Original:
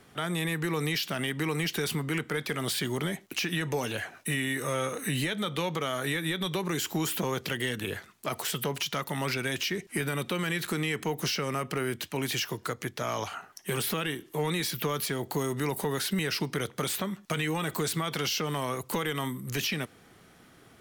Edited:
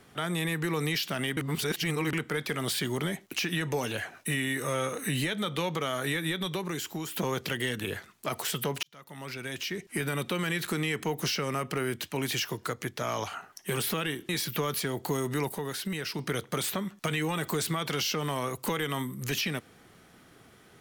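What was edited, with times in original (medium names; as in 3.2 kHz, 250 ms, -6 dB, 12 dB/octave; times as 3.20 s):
1.37–2.13 s: reverse
6.26–7.16 s: fade out, to -8.5 dB
8.83–10.12 s: fade in
14.29–14.55 s: delete
15.75–16.45 s: gain -4.5 dB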